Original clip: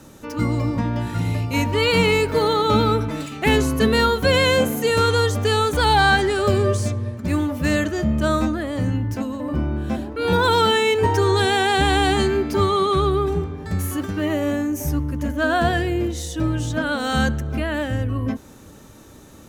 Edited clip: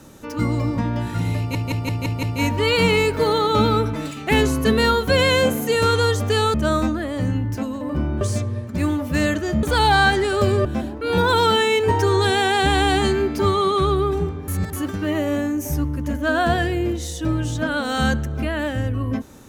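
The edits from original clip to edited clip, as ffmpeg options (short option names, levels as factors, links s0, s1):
-filter_complex "[0:a]asplit=12[s0][s1][s2][s3][s4][s5][s6][s7][s8][s9][s10][s11];[s0]atrim=end=1.552[s12];[s1]atrim=start=1.378:end=1.552[s13];[s2]atrim=start=1.378:end=1.552[s14];[s3]atrim=start=1.378:end=1.552[s15];[s4]atrim=start=1.378:end=1.552[s16];[s5]atrim=start=1.378:end=5.692[s17];[s6]atrim=start=8.128:end=9.802[s18];[s7]atrim=start=6.708:end=8.132[s19];[s8]atrim=start=5.688:end=6.712[s20];[s9]atrim=start=9.798:end=13.632[s21];[s10]atrim=start=13.628:end=13.882,asetpts=PTS-STARTPTS,areverse[s22];[s11]atrim=start=13.878[s23];[s12][s13]acrossfade=d=0.004:c1=hsin:c2=hsin[s24];[s24][s14]acrossfade=d=0.004:c1=hsin:c2=hsin[s25];[s25][s15]acrossfade=d=0.004:c1=hsin:c2=hsin[s26];[s26][s16]acrossfade=d=0.004:c1=hsin:c2=hsin[s27];[s27][s17]acrossfade=d=0.004:c1=hsin:c2=hsin[s28];[s28][s18]acrossfade=d=0.004:c1=hsin:c2=hsin[s29];[s29][s19]acrossfade=d=0.004:c1=hsin:c2=hsin[s30];[s30][s20]acrossfade=d=0.004:c1=hsin:c2=hsin[s31];[s31][s21]acrossfade=d=0.004:c1=hsin:c2=hsin[s32];[s32][s22]acrossfade=d=0.004:c1=hsin:c2=hsin[s33];[s33][s23]acrossfade=d=0.004:c1=hsin:c2=hsin"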